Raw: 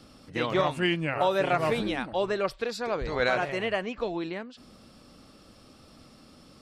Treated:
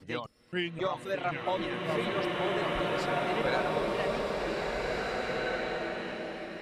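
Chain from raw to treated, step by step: slices in reverse order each 0.263 s, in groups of 2; reverb removal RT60 1.7 s; bloom reverb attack 2.06 s, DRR -4 dB; gain -6 dB

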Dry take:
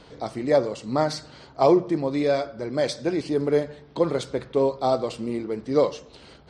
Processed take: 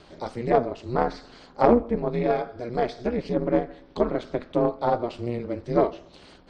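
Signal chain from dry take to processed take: treble ducked by the level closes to 2300 Hz, closed at -20.5 dBFS; ring modulator 120 Hz; added harmonics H 2 -14 dB, 3 -23 dB, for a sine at -7 dBFS; gain +3.5 dB

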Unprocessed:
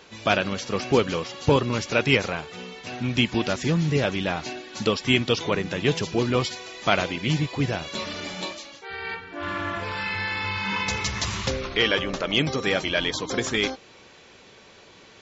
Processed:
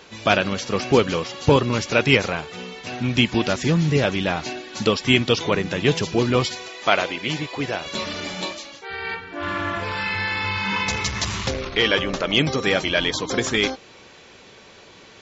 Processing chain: 6.68–7.86 tone controls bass -12 dB, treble -3 dB; 10.64–11.93 core saturation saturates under 760 Hz; gain +3.5 dB

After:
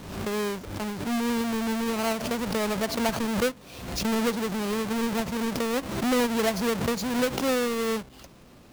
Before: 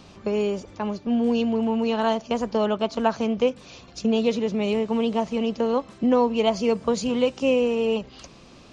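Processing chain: half-waves squared off; backwards sustainer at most 56 dB/s; gain -8.5 dB

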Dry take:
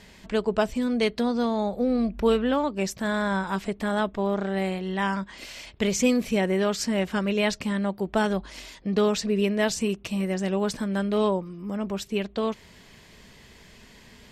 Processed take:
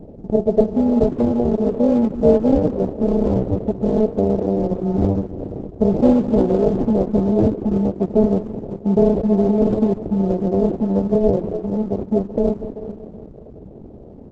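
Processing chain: regenerating reverse delay 0.19 s, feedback 61%, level -13.5 dB; hard clip -13 dBFS, distortion -33 dB; in parallel at -0.5 dB: compressor 5:1, threshold -37 dBFS, peak gain reduction 18 dB; on the sum: low shelf 66 Hz -11.5 dB; sample-and-hold 41×; inverse Chebyshev low-pass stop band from 1400 Hz, stop band 40 dB; on a send: echo 0.199 s -14 dB; on the sum: gain +8.5 dB; Opus 12 kbps 48000 Hz

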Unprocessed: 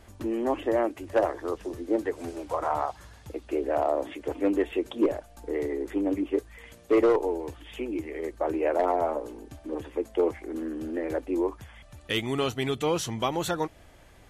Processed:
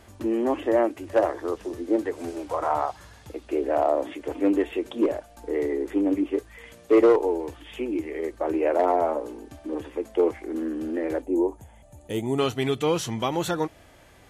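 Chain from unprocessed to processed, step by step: spectral gain 11.22–12.38, 970–6200 Hz -13 dB; low shelf 62 Hz -11 dB; harmonic-percussive split harmonic +5 dB

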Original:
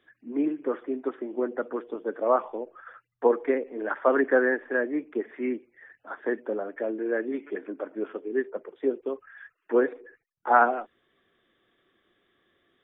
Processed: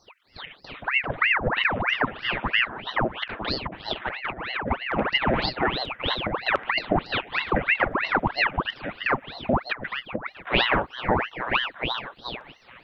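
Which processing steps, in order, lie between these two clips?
LFO high-pass square 0.61 Hz 280–2400 Hz; on a send: delay with a stepping band-pass 0.429 s, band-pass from 480 Hz, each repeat 0.7 oct, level -0.5 dB; on the sum: added harmonics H 2 -15 dB, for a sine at -2.5 dBFS; negative-ratio compressor -26 dBFS, ratio -0.5; ring modulator with a swept carrier 1300 Hz, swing 90%, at 3.1 Hz; gain +6.5 dB

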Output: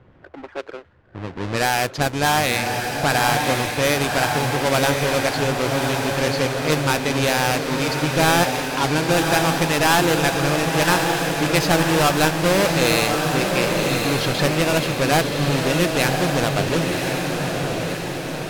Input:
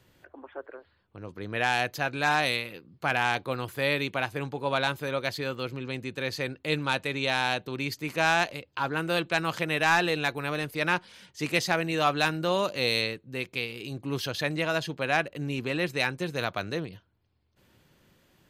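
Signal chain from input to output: half-waves squared off; in parallel at 0 dB: compressor, threshold -28 dBFS, peak gain reduction 12 dB; on the sum: low-pass opened by the level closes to 1700 Hz, open at -16 dBFS; diffused feedback echo 1.097 s, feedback 58%, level -3 dB

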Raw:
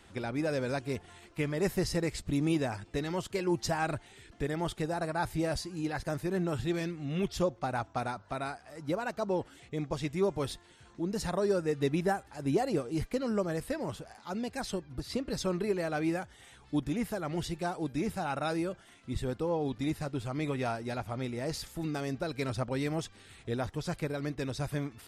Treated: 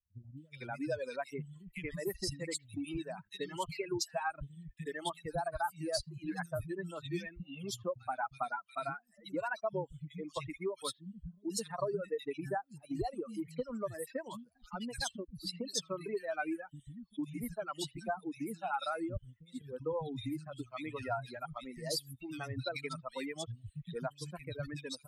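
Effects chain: per-bin expansion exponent 2; compressor 12:1, threshold -39 dBFS, peak gain reduction 14 dB; low shelf 360 Hz -6 dB; three bands offset in time lows, highs, mids 0.37/0.45 s, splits 190/2300 Hz; reverb removal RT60 1.4 s; gain +10 dB

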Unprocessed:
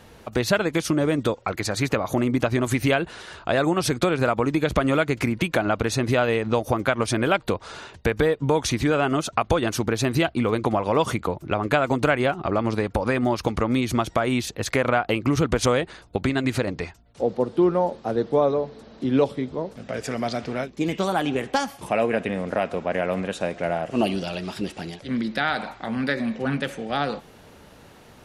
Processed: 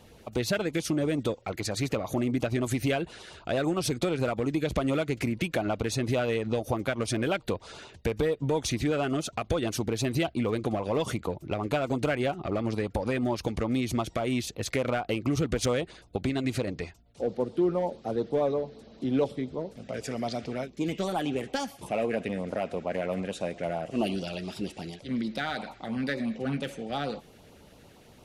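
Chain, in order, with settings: in parallel at -6 dB: overloaded stage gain 20.5 dB; on the sum: LFO notch sine 8.8 Hz 900–1800 Hz; gain -8 dB

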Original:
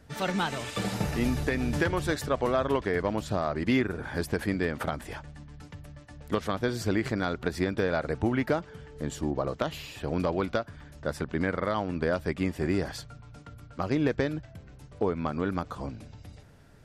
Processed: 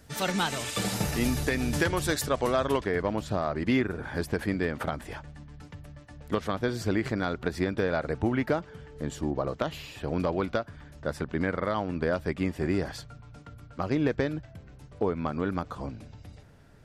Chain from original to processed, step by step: high shelf 4400 Hz +10.5 dB, from 2.84 s -3 dB

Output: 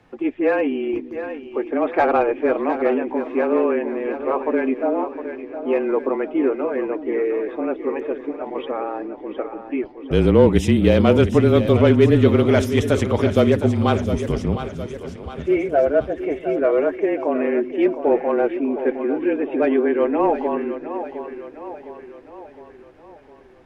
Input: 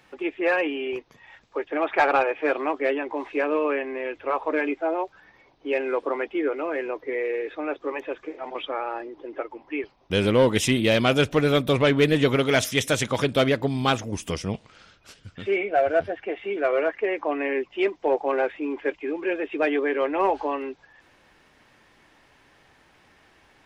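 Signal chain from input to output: tilt shelf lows +7.5 dB, about 1200 Hz; split-band echo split 330 Hz, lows 0.301 s, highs 0.71 s, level -10 dB; frequency shift -27 Hz

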